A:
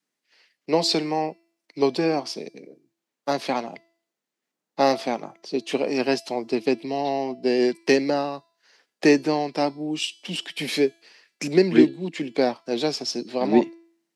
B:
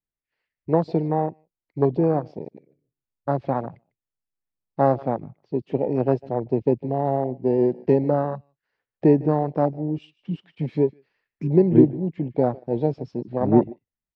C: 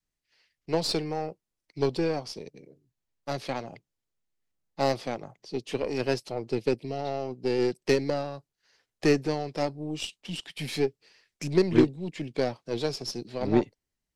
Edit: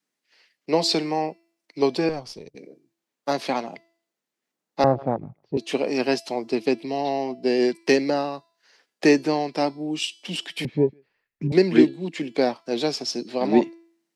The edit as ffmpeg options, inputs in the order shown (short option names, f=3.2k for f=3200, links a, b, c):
-filter_complex "[1:a]asplit=2[a][b];[0:a]asplit=4[c][d][e][f];[c]atrim=end=2.092[g];[2:a]atrim=start=2.088:end=2.552[h];[d]atrim=start=2.548:end=4.842[i];[a]atrim=start=4.838:end=5.572[j];[e]atrim=start=5.568:end=10.652[k];[b]atrim=start=10.648:end=11.522[l];[f]atrim=start=11.518[m];[g][h]acrossfade=d=0.004:c1=hsin:c2=hsin[n];[n][i]acrossfade=d=0.004:c1=hsin:c2=hsin[o];[o][j]acrossfade=d=0.004:c1=hsin:c2=hsin[p];[p][k]acrossfade=d=0.004:c1=hsin:c2=hsin[q];[q][l]acrossfade=d=0.004:c1=hsin:c2=hsin[r];[r][m]acrossfade=d=0.004:c1=hsin:c2=hsin"